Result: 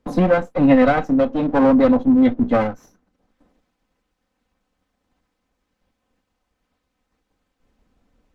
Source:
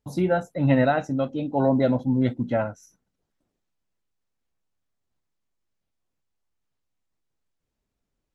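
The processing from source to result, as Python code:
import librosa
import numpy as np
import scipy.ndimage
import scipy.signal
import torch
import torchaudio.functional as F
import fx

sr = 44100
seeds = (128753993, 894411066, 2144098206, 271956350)

y = fx.lower_of_two(x, sr, delay_ms=3.9)
y = fx.lowpass(y, sr, hz=1900.0, slope=6)
y = fx.band_squash(y, sr, depth_pct=40)
y = F.gain(torch.from_numpy(y), 7.5).numpy()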